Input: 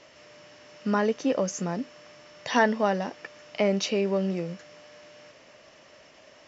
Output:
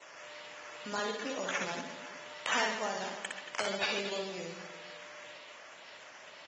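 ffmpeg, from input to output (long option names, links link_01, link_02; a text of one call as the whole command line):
ffmpeg -i in.wav -filter_complex "[0:a]asplit=2[link_01][link_02];[link_02]aecho=0:1:122|244|366:0.0668|0.0341|0.0174[link_03];[link_01][link_03]amix=inputs=2:normalize=0,adynamicequalizer=threshold=0.00251:dfrequency=3800:dqfactor=3.2:tfrequency=3800:tqfactor=3.2:attack=5:release=100:ratio=0.375:range=2:mode=cutabove:tftype=bell,acompressor=threshold=-34dB:ratio=2.5,highshelf=frequency=2400:gain=7,acrusher=samples=9:mix=1:aa=0.000001:lfo=1:lforange=5.4:lforate=2,highpass=frequency=960:poles=1,asplit=2[link_04][link_05];[link_05]aecho=0:1:60|135|228.8|345.9|492.4:0.631|0.398|0.251|0.158|0.1[link_06];[link_04][link_06]amix=inputs=2:normalize=0" -ar 48000 -c:a aac -b:a 24k out.aac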